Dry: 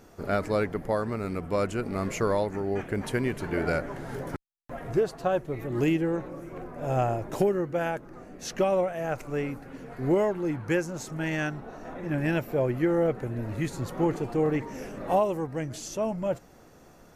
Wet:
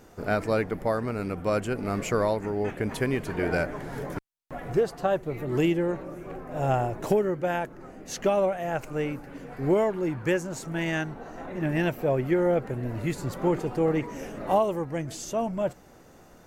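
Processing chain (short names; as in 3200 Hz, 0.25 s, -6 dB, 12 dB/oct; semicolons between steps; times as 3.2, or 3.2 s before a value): speed mistake 24 fps film run at 25 fps; gain +1 dB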